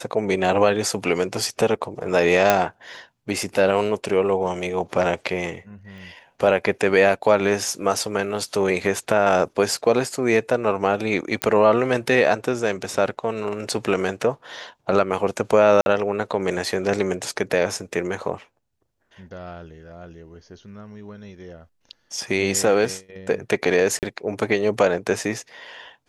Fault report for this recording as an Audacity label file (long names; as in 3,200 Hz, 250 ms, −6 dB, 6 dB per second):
2.500000	2.500000	click −1 dBFS
5.980000	5.980000	click
11.420000	11.420000	click −5 dBFS
15.810000	15.860000	drop-out 51 ms
23.990000	24.030000	drop-out 38 ms